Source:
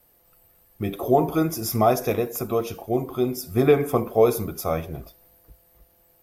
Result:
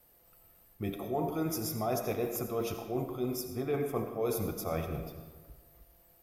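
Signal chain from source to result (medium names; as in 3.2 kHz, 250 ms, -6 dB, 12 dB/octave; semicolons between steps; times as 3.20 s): reverse; compression 6:1, threshold -27 dBFS, peak gain reduction 14.5 dB; reverse; reverberation RT60 1.4 s, pre-delay 45 ms, DRR 7 dB; trim -3.5 dB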